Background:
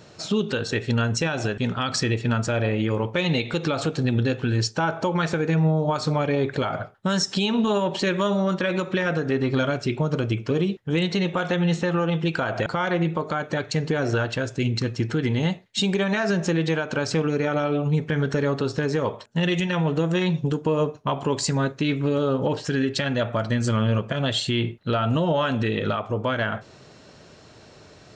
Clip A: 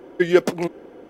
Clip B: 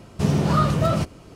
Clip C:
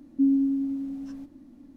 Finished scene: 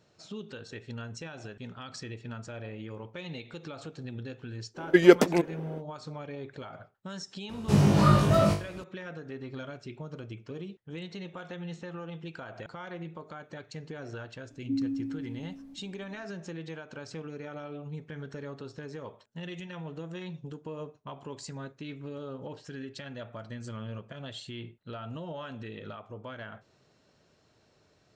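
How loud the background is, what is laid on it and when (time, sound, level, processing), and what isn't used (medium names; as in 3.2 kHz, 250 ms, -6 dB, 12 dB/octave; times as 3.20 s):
background -17.5 dB
4.74 s: add A -0.5 dB, fades 0.05 s
7.49 s: add B -4 dB + flutter echo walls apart 3.4 m, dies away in 0.35 s
14.50 s: add C -9 dB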